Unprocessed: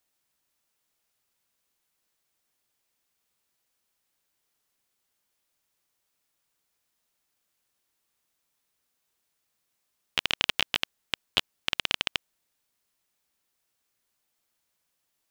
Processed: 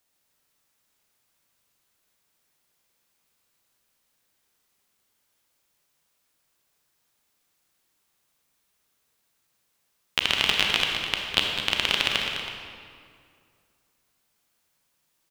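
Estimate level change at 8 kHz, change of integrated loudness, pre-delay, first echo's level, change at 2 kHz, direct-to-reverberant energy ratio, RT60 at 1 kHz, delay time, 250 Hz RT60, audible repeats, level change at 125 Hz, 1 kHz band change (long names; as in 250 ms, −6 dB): +5.5 dB, +5.0 dB, 29 ms, −8.5 dB, +6.0 dB, −0.5 dB, 2.1 s, 206 ms, 2.4 s, 2, +7.0 dB, +6.5 dB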